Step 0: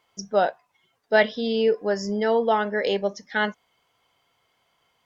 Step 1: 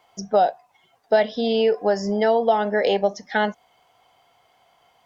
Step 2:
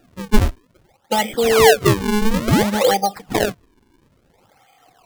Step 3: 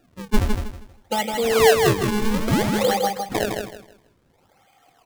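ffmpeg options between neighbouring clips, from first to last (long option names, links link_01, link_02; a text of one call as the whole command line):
ffmpeg -i in.wav -filter_complex "[0:a]equalizer=frequency=740:width_type=o:width=0.47:gain=12,acrossover=split=550|3700[link_01][link_02][link_03];[link_01]acompressor=threshold=-26dB:ratio=4[link_04];[link_02]acompressor=threshold=-27dB:ratio=4[link_05];[link_03]acompressor=threshold=-43dB:ratio=4[link_06];[link_04][link_05][link_06]amix=inputs=3:normalize=0,volume=5dB" out.wav
ffmpeg -i in.wav -af "afftfilt=real='re*pow(10,22/40*sin(2*PI*(1.5*log(max(b,1)*sr/1024/100)/log(2)-(-0.59)*(pts-256)/sr)))':imag='im*pow(10,22/40*sin(2*PI*(1.5*log(max(b,1)*sr/1024/100)/log(2)-(-0.59)*(pts-256)/sr)))':win_size=1024:overlap=0.75,acrusher=samples=39:mix=1:aa=0.000001:lfo=1:lforange=62.4:lforate=0.58" out.wav
ffmpeg -i in.wav -af "aecho=1:1:159|318|477|636:0.562|0.152|0.041|0.0111,volume=-5dB" out.wav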